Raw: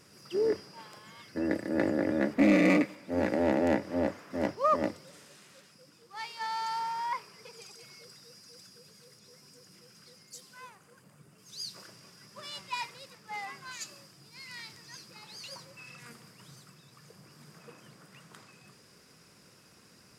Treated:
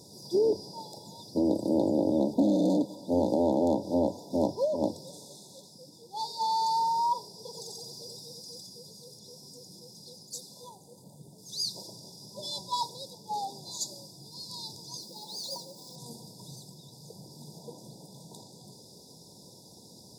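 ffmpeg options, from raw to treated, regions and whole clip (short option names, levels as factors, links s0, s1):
-filter_complex "[0:a]asettb=1/sr,asplit=3[s0][s1][s2];[s0]atrim=end=7.464[s3];[s1]atrim=start=7.46:end=8.58,asetpts=PTS-STARTPTS,afade=t=in:d=0.004:c=qsin,afade=t=out:st=1.116:d=0.004:c=qsin,acrusher=bits=8:mode=log:mix=0:aa=0.000001,aecho=1:1:87:0.668,atrim=end_sample=49392[s4];[s2]atrim=start=8.576[s5];[s3][s4]acrossfade=d=0.004:c1=hsin:c2=qsin[s6];[s6][s5]acrossfade=d=0.004:c1=qsin:c2=hsin,asettb=1/sr,asplit=3[s7][s8][s9];[s7]atrim=end=15.014[s10];[s8]atrim=start=15.01:end=15.96,asetpts=PTS-STARTPTS,afade=t=in:d=0.004:c=qsin,afade=t=out:st=0.946:d=0.004:c=qsin,highpass=f=170:w=0.5412,highpass=f=170:w=1.3066,acrusher=bits=3:mode=log:mix=0:aa=0.000001[s11];[s9]atrim=start=15.956[s12];[s10][s11]acrossfade=d=0.004:c1=hsin:c2=qsin[s13];[s13][s12]acrossfade=d=0.004:c1=qsin:c2=hsin,acompressor=threshold=0.0355:ratio=6,afftfilt=real='re*(1-between(b*sr/4096,1000,3400))':imag='im*(1-between(b*sr/4096,1000,3400))':win_size=4096:overlap=0.75,highpass=70,volume=2.37"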